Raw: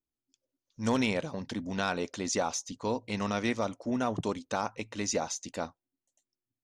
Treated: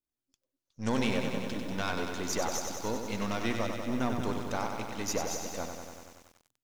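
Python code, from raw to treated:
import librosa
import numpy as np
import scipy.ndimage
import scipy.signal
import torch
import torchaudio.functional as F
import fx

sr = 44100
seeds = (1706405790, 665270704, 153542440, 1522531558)

y = np.where(x < 0.0, 10.0 ** (-7.0 / 20.0) * x, x)
y = fx.echo_crushed(y, sr, ms=95, feedback_pct=80, bits=9, wet_db=-6)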